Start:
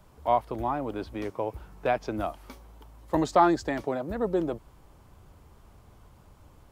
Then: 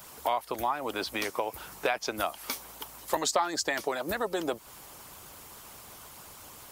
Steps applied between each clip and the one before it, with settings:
harmonic and percussive parts rebalanced percussive +9 dB
spectral tilt +4 dB per octave
downward compressor 3 to 1, threshold −33 dBFS, peak gain reduction 17 dB
level +4 dB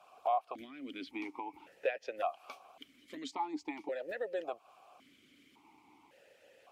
formant filter that steps through the vowels 1.8 Hz
level +2 dB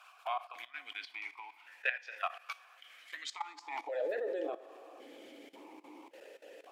coupled-rooms reverb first 0.5 s, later 4.9 s, from −18 dB, DRR 9.5 dB
output level in coarse steps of 16 dB
high-pass filter sweep 1,600 Hz → 340 Hz, 0:03.44–0:04.25
level +8 dB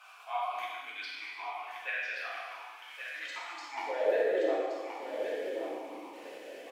volume swells 111 ms
single-tap delay 1,124 ms −7.5 dB
reverb whose tail is shaped and stops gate 490 ms falling, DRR −6.5 dB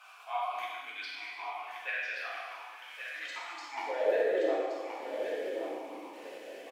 single-tap delay 850 ms −22 dB

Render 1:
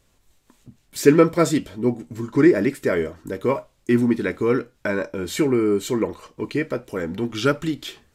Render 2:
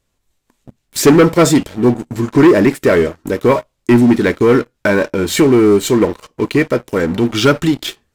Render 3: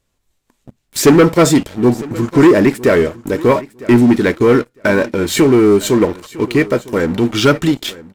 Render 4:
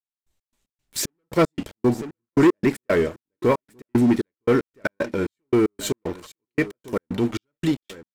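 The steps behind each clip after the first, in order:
leveller curve on the samples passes 3
repeating echo 955 ms, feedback 17%, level −19.5 dB
gate pattern "..x.x.xx" 114 BPM −60 dB; level −7.5 dB

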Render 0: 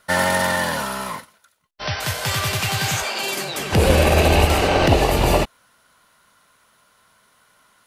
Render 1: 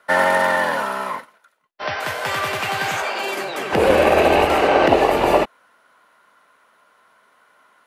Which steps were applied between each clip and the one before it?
three-way crossover with the lows and the highs turned down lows −19 dB, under 250 Hz, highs −13 dB, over 2,500 Hz
level +4 dB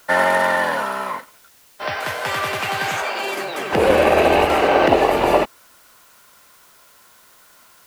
background noise white −52 dBFS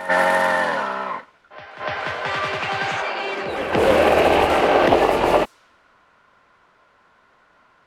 low-pass that shuts in the quiet parts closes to 1,900 Hz, open at −12 dBFS
echo ahead of the sound 293 ms −13 dB
highs frequency-modulated by the lows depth 0.22 ms
level −1 dB

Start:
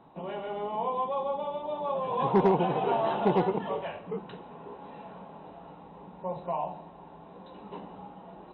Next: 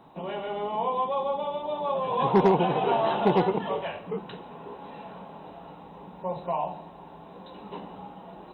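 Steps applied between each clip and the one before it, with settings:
high-shelf EQ 3,600 Hz +9 dB
level +2.5 dB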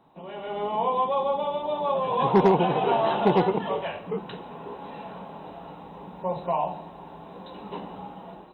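automatic gain control gain up to 10 dB
level −7 dB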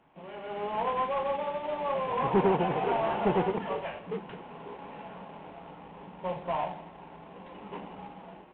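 variable-slope delta modulation 16 kbit/s
level −4.5 dB

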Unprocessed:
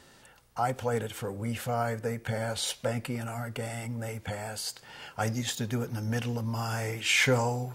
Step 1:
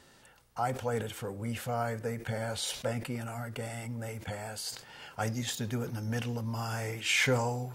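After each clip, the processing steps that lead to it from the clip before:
level that may fall only so fast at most 110 dB per second
level −3 dB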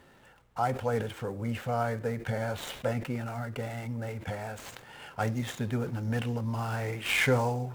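running median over 9 samples
level +3 dB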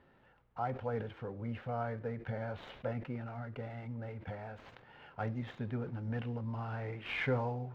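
high-frequency loss of the air 310 metres
level −6.5 dB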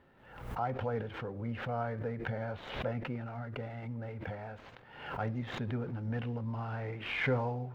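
background raised ahead of every attack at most 70 dB per second
level +1.5 dB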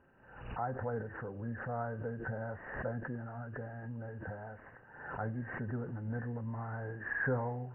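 hearing-aid frequency compression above 1,500 Hz 4 to 1
level −2.5 dB

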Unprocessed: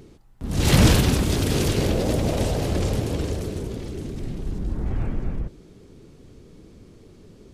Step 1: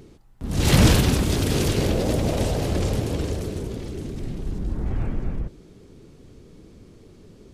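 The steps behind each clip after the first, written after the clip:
no processing that can be heard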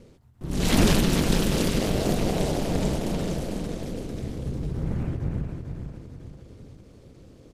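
repeating echo 449 ms, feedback 45%, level −6.5 dB
ring modulation 100 Hz
every ending faded ahead of time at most 110 dB per second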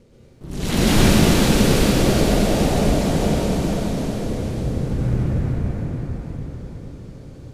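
convolution reverb RT60 4.5 s, pre-delay 93 ms, DRR −9 dB
level −2 dB

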